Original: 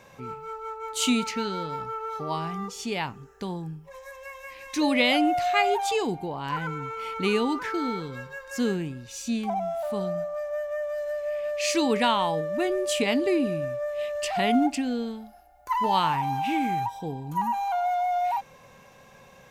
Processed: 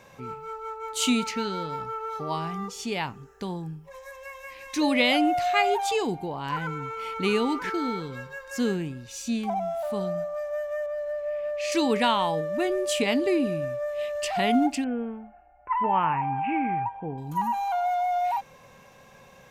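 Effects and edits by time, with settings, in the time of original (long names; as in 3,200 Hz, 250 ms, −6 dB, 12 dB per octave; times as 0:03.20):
0:06.84–0:07.25: delay throw 440 ms, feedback 10%, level −10.5 dB
0:10.86–0:11.72: high-shelf EQ 2,900 Hz −11.5 dB
0:14.84–0:17.18: elliptic low-pass filter 2,600 Hz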